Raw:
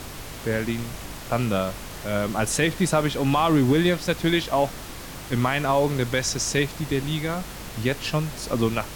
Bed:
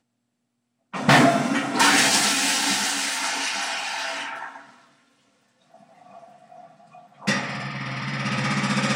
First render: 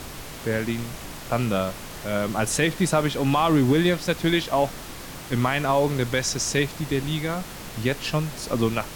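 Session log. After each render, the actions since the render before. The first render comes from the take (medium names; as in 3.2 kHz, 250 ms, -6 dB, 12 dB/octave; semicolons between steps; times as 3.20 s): de-hum 50 Hz, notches 2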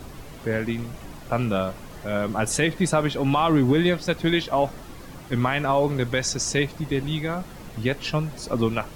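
noise reduction 10 dB, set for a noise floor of -38 dBFS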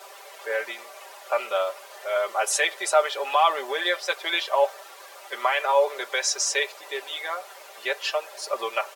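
steep high-pass 500 Hz 36 dB/octave; comb 5.1 ms, depth 80%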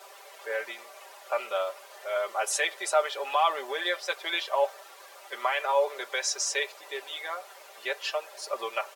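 trim -4.5 dB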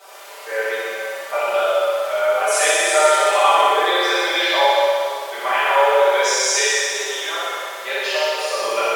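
flutter echo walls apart 10.6 m, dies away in 1.2 s; plate-style reverb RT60 2.2 s, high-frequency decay 0.95×, DRR -9.5 dB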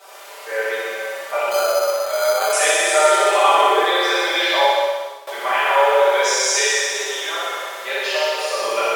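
1.51–2.53 s: careless resampling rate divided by 8×, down filtered, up hold; 3.11–3.84 s: peaking EQ 380 Hz +9.5 dB 0.29 oct; 4.65–5.27 s: fade out, to -15.5 dB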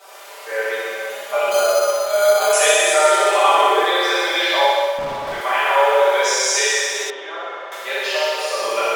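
1.09–2.94 s: comb 4.8 ms, depth 70%; 4.98–5.41 s: overdrive pedal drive 37 dB, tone 1.1 kHz, clips at -16.5 dBFS; 7.10–7.72 s: tape spacing loss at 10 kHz 33 dB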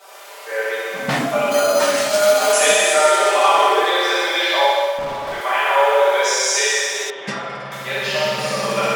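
add bed -6 dB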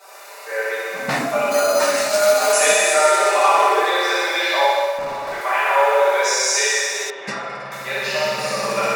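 bass shelf 250 Hz -7 dB; band-stop 3.2 kHz, Q 5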